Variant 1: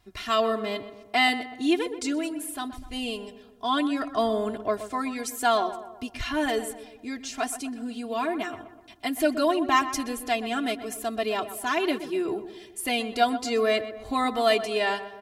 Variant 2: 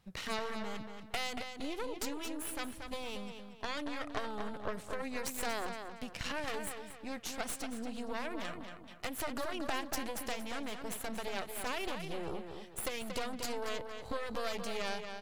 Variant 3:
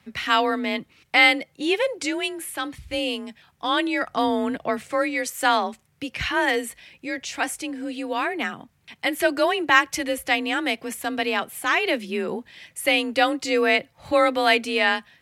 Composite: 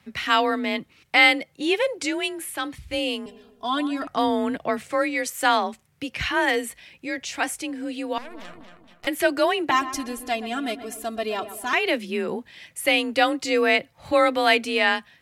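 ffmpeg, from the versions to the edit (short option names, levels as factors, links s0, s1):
-filter_complex "[0:a]asplit=2[s0][s1];[2:a]asplit=4[s2][s3][s4][s5];[s2]atrim=end=3.262[s6];[s0]atrim=start=3.258:end=4.072[s7];[s3]atrim=start=4.068:end=8.182[s8];[1:a]atrim=start=8.178:end=9.072[s9];[s4]atrim=start=9.068:end=9.712[s10];[s1]atrim=start=9.708:end=11.732[s11];[s5]atrim=start=11.728[s12];[s6][s7]acrossfade=d=0.004:c1=hsin:c2=hsin[s13];[s13][s8]acrossfade=d=0.004:c1=hsin:c2=hsin[s14];[s14][s9]acrossfade=d=0.004:c1=hsin:c2=hsin[s15];[s15][s10]acrossfade=d=0.004:c1=hsin:c2=hsin[s16];[s16][s11]acrossfade=d=0.004:c1=hsin:c2=hsin[s17];[s17][s12]acrossfade=d=0.004:c1=hsin:c2=hsin"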